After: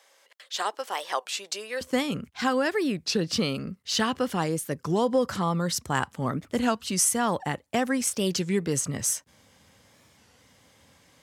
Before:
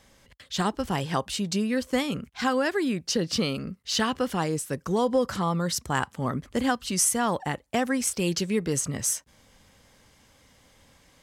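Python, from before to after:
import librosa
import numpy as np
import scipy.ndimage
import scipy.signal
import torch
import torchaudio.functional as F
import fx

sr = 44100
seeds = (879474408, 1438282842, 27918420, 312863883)

y = fx.highpass(x, sr, hz=fx.steps((0.0, 480.0), (1.81, 73.0)), slope=24)
y = fx.record_warp(y, sr, rpm=33.33, depth_cents=160.0)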